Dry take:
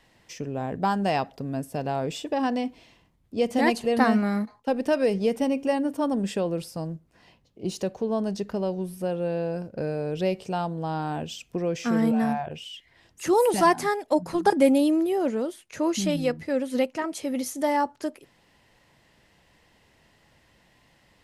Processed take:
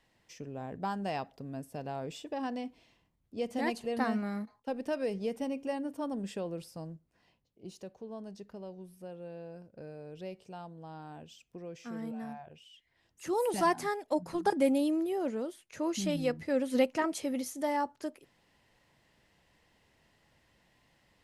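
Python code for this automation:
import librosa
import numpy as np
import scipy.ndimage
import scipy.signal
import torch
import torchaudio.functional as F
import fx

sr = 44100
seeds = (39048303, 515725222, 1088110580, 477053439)

y = fx.gain(x, sr, db=fx.line((6.86, -10.5), (7.78, -17.0), (12.68, -17.0), (13.61, -8.0), (15.86, -8.0), (17.04, -1.0), (17.48, -7.5)))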